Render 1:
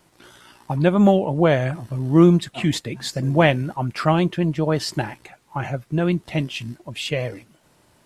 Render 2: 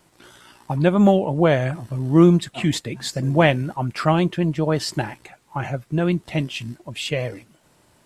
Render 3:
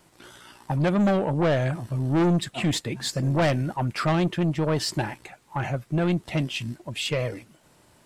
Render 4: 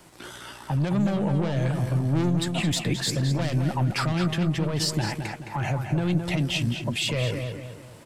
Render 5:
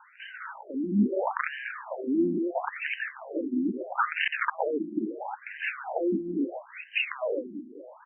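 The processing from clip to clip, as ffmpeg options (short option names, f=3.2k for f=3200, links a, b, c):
-af "equalizer=f=7.8k:w=5:g=3"
-af "asoftclip=type=tanh:threshold=-17.5dB"
-filter_complex "[0:a]acrossover=split=190|3000[a][b][c];[b]acompressor=threshold=-35dB:ratio=2[d];[a][d][c]amix=inputs=3:normalize=0,alimiter=level_in=0.5dB:limit=-24dB:level=0:latency=1:release=69,volume=-0.5dB,asplit=2[e][f];[f]adelay=215,lowpass=f=3.8k:p=1,volume=-6dB,asplit=2[g][h];[h]adelay=215,lowpass=f=3.8k:p=1,volume=0.42,asplit=2[i][j];[j]adelay=215,lowpass=f=3.8k:p=1,volume=0.42,asplit=2[k][l];[l]adelay=215,lowpass=f=3.8k:p=1,volume=0.42,asplit=2[m][n];[n]adelay=215,lowpass=f=3.8k:p=1,volume=0.42[o];[e][g][i][k][m][o]amix=inputs=6:normalize=0,volume=6.5dB"
-af "afftfilt=real='re*between(b*sr/4096,140,6000)':imag='im*between(b*sr/4096,140,6000)':win_size=4096:overlap=0.75,aeval=exprs='(mod(7.5*val(0)+1,2)-1)/7.5':c=same,afftfilt=real='re*between(b*sr/1024,250*pow(2200/250,0.5+0.5*sin(2*PI*0.75*pts/sr))/1.41,250*pow(2200/250,0.5+0.5*sin(2*PI*0.75*pts/sr))*1.41)':imag='im*between(b*sr/1024,250*pow(2200/250,0.5+0.5*sin(2*PI*0.75*pts/sr))/1.41,250*pow(2200/250,0.5+0.5*sin(2*PI*0.75*pts/sr))*1.41)':win_size=1024:overlap=0.75,volume=5.5dB"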